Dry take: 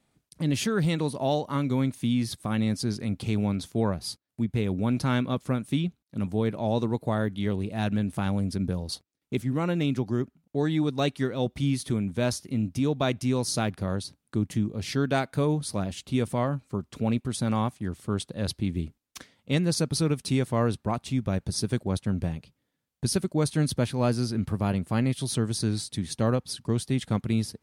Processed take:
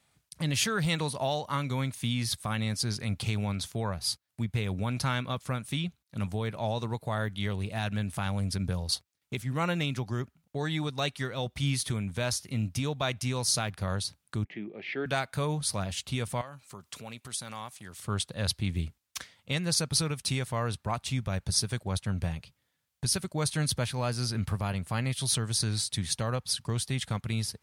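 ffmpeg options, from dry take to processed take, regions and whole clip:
-filter_complex "[0:a]asettb=1/sr,asplit=3[a][b][c];[a]atrim=end=14.444[d];[b]atrim=start=14.44:end=15.06,asetpts=PTS-STARTPTS,afade=t=in:d=0.004:c=qsin,afade=t=out:st=0.616:d=0.004:c=qsin,highpass=f=230:w=0.5412,highpass=f=230:w=1.3066,equalizer=f=240:t=q:w=4:g=-5,equalizer=f=360:t=q:w=4:g=7,equalizer=f=520:t=q:w=4:g=-3,equalizer=f=960:t=q:w=4:g=-8,equalizer=f=1.4k:t=q:w=4:g=-10,equalizer=f=2.2k:t=q:w=4:g=4,lowpass=f=2.4k:w=0.5412,lowpass=f=2.4k:w=1.3066,bandreject=f=1.1k:w=7[e];[c]atrim=start=15.056[f];[d][e]acrossfade=d=0.004:c1=hsin:c2=qsin[g];[g][f]acrossfade=d=0.004:c1=qsin:c2=hsin,asettb=1/sr,asplit=3[h][i][j];[h]atrim=end=16.414[k];[i]atrim=start=16.41:end=18,asetpts=PTS-STARTPTS,afade=t=in:d=0.004:c=qsin,afade=t=out:st=1.586:d=0.004:c=qsin,highpass=f=270:p=1,highshelf=f=3.9k:g=7.5,acompressor=threshold=-44dB:ratio=2:attack=3.2:release=140:knee=1:detection=peak[l];[j]atrim=start=17.996[m];[k][l]acrossfade=d=0.004:c1=hsin:c2=qsin[n];[n][m]acrossfade=d=0.004:c1=qsin:c2=hsin,highpass=57,alimiter=limit=-18dB:level=0:latency=1:release=252,equalizer=f=290:w=0.69:g=-14,volume=5.5dB"

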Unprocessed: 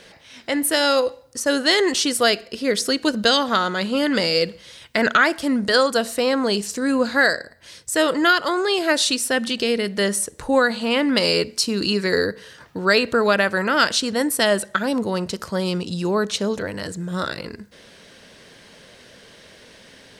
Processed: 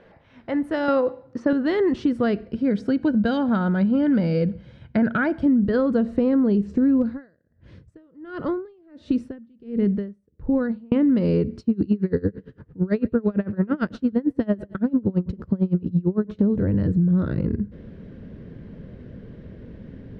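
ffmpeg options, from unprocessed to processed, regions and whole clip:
-filter_complex "[0:a]asettb=1/sr,asplit=3[a][b][c];[a]atrim=end=0.884[d];[b]atrim=start=0.88:end=1.53,asetpts=PTS-STARTPTS,afade=t=in:d=0.004:c=qsin,afade=t=out:st=0.646:d=0.004:c=qsin,acontrast=64,highpass=200,lowpass=5.2k[e];[c]atrim=start=1.526[f];[d][e]acrossfade=d=0.004:c1=hsin:c2=qsin[g];[g][f]acrossfade=d=0.004:c1=qsin:c2=hsin,asettb=1/sr,asplit=3[h][i][j];[h]atrim=end=2.514[k];[i]atrim=start=2.51:end=5.46,asetpts=PTS-STARTPTS,afade=t=in:d=0.004:c=qsin,afade=t=out:st=2.946:d=0.004:c=qsin,highpass=f=160:p=1,aecho=1:1:1.3:0.46,atrim=end_sample=130095[l];[j]atrim=start=5.456[m];[k][l]acrossfade=d=0.004:c1=hsin:c2=qsin[n];[n][m]acrossfade=d=0.004:c1=qsin:c2=hsin,asettb=1/sr,asplit=3[o][p][q];[o]atrim=end=7.024[r];[p]atrim=start=7.02:end=10.92,asetpts=PTS-STARTPTS,afade=t=in:d=0.004:c=qsin,afade=t=out:st=3.896:d=0.004:c=qsin,acompressor=threshold=-18dB:ratio=4:attack=3.2:release=140:knee=1:detection=peak,aeval=exprs='val(0)*pow(10,-36*(0.5-0.5*cos(2*PI*1.4*n/s))/20)':c=same[s];[q]atrim=start=10.916[t];[r][s]acrossfade=d=0.004:c1=hsin:c2=qsin[u];[u][t]acrossfade=d=0.004:c1=qsin:c2=hsin,asettb=1/sr,asplit=3[v][w][x];[v]atrim=end=11.594[y];[w]atrim=start=11.59:end=16.39,asetpts=PTS-STARTPTS,afade=t=in:d=0.004:c=qsin,afade=t=out:st=4.796:d=0.004:c=qsin,aecho=1:1:140|280|420:0.0794|0.0318|0.0127,atrim=end_sample=211680,aeval=exprs='val(0)*pow(10,-27*(0.5-0.5*cos(2*PI*8.9*n/s))/20)':c=same[z];[x]atrim=start=16.386[aa];[y][z]acrossfade=d=0.004:c1=hsin:c2=qsin[ab];[ab][aa]acrossfade=d=0.004:c1=qsin:c2=hsin,lowpass=1.2k,asubboost=boost=11:cutoff=240,acompressor=threshold=-15dB:ratio=6,volume=-1.5dB"

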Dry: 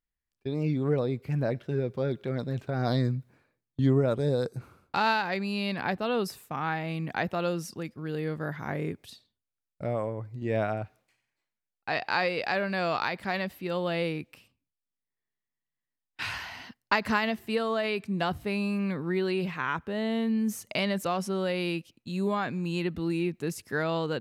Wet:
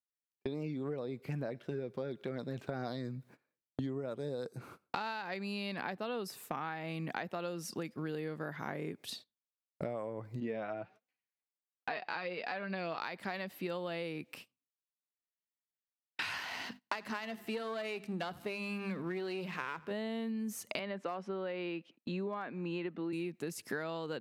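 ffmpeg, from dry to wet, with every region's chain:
-filter_complex "[0:a]asettb=1/sr,asplit=3[a][b][c];[a]atrim=end=10.404[d];[b]atrim=start=10.4:end=12.98,asetpts=PTS-STARTPTS,afade=t=in:d=0.004:c=qsin,afade=t=out:st=2.576:d=0.004:c=qsin,lowpass=4.4k,flanger=delay=3.9:depth=2.4:regen=37:speed=1.4:shape=sinusoidal[e];[c]atrim=start=12.976[f];[d][e]acrossfade=d=0.004:c1=hsin:c2=qsin[g];[g][f]acrossfade=d=0.004:c1=qsin:c2=hsin,asettb=1/sr,asplit=3[h][i][j];[h]atrim=end=16.404[k];[i]atrim=start=16.4:end=19.91,asetpts=PTS-STARTPTS,afade=t=in:d=0.004:c=qsin,afade=t=out:st=3.506:d=0.004:c=qsin,aeval=exprs='if(lt(val(0),0),0.447*val(0),val(0))':c=same,bandreject=f=50:t=h:w=6,bandreject=f=100:t=h:w=6,bandreject=f=150:t=h:w=6,bandreject=f=200:t=h:w=6,bandreject=f=250:t=h:w=6,aecho=1:1:82|164|246:0.0708|0.0311|0.0137,atrim=end_sample=154791[l];[j]atrim=start=19.906[m];[k][l]acrossfade=d=0.004:c1=hsin:c2=qsin[n];[n][m]acrossfade=d=0.004:c1=qsin:c2=hsin,asettb=1/sr,asplit=3[o][p][q];[o]atrim=end=20.794[r];[p]atrim=start=20.79:end=23.13,asetpts=PTS-STARTPTS,afade=t=in:d=0.004:c=qsin,afade=t=out:st=2.336:d=0.004:c=qsin,highpass=210,lowpass=2.4k,asoftclip=type=hard:threshold=-19.5dB[s];[q]atrim=start=23.126[t];[r][s]acrossfade=d=0.004:c1=hsin:c2=qsin[u];[u][t]acrossfade=d=0.004:c1=qsin:c2=hsin,highpass=180,agate=range=-21dB:threshold=-55dB:ratio=16:detection=peak,acompressor=threshold=-42dB:ratio=16,volume=7dB"

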